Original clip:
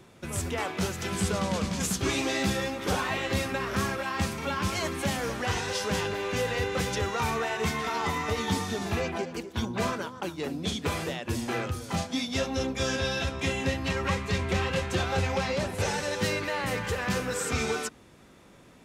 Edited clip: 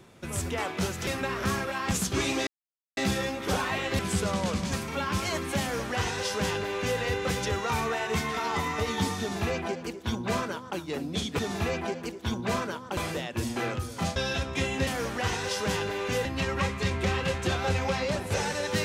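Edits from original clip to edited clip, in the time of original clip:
1.07–1.81 s: swap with 3.38–4.23 s
2.36 s: insert silence 0.50 s
5.11–6.49 s: copy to 13.73 s
8.70–10.28 s: copy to 10.89 s
12.08–13.02 s: delete

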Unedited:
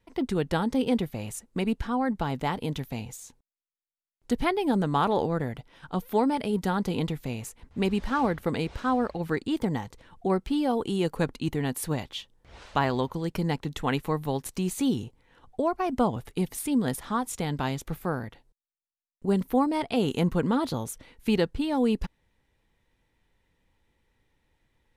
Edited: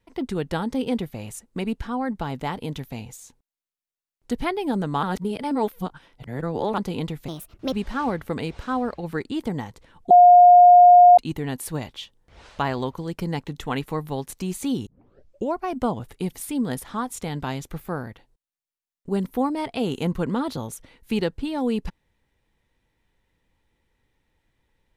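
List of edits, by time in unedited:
5.03–6.78 s: reverse
7.28–7.89 s: speed 137%
10.27–11.34 s: bleep 712 Hz -7 dBFS
15.03 s: tape start 0.67 s

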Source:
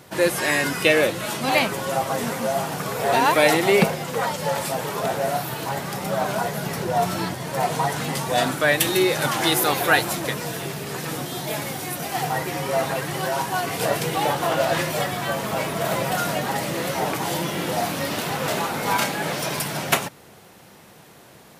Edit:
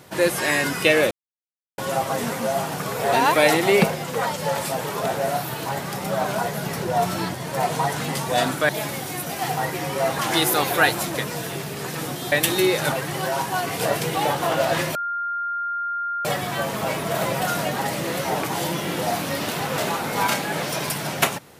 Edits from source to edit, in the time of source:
1.11–1.78 s: mute
8.69–9.29 s: swap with 11.42–12.92 s
14.95 s: add tone 1.4 kHz -23.5 dBFS 1.30 s

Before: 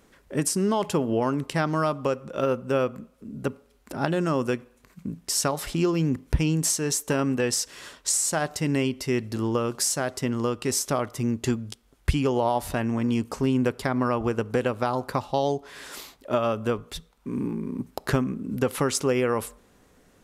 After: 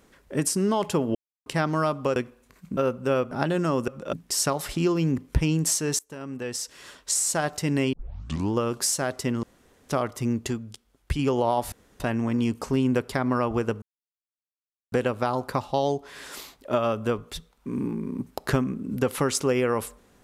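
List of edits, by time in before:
1.15–1.46 s: mute
2.16–2.41 s: swap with 4.50–5.11 s
2.95–3.93 s: delete
6.97–8.25 s: fade in, from -23.5 dB
8.91 s: tape start 0.59 s
10.41–10.87 s: room tone
11.46–12.17 s: gain -4.5 dB
12.70 s: insert room tone 0.28 s
14.52 s: insert silence 1.10 s

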